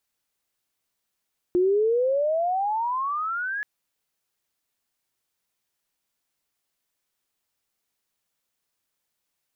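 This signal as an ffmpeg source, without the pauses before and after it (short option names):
-f lavfi -i "aevalsrc='pow(10,(-17-9.5*t/2.08)/20)*sin(2*PI*350*2.08/(27.5*log(2)/12)*(exp(27.5*log(2)/12*t/2.08)-1))':d=2.08:s=44100"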